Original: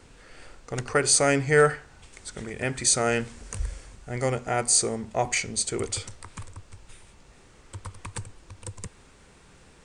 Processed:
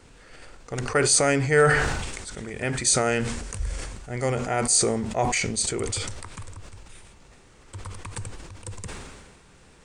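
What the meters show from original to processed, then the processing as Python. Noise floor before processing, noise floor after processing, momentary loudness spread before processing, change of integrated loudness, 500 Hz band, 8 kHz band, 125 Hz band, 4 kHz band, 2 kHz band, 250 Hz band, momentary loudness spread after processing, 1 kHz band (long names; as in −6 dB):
−54 dBFS, −53 dBFS, 22 LU, +1.0 dB, +1.0 dB, +1.0 dB, +3.0 dB, +1.5 dB, +2.5 dB, +3.0 dB, 21 LU, +2.0 dB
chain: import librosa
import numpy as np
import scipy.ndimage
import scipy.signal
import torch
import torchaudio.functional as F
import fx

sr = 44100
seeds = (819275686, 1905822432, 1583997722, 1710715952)

y = fx.sustainer(x, sr, db_per_s=37.0)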